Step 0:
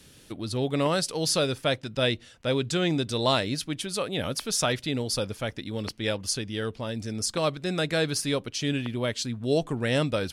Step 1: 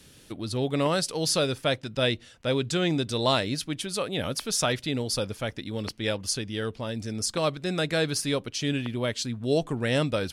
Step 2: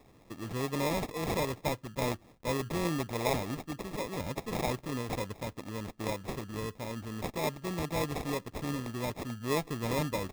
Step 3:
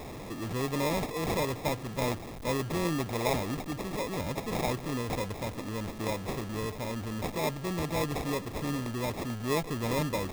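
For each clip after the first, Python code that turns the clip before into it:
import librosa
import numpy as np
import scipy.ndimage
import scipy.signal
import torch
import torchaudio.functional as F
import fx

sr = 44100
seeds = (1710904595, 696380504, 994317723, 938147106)

y1 = x
y2 = fx.sample_hold(y1, sr, seeds[0], rate_hz=1500.0, jitter_pct=0)
y2 = F.gain(torch.from_numpy(y2), -6.5).numpy()
y3 = y2 + 0.5 * 10.0 ** (-36.5 / 20.0) * np.sign(y2)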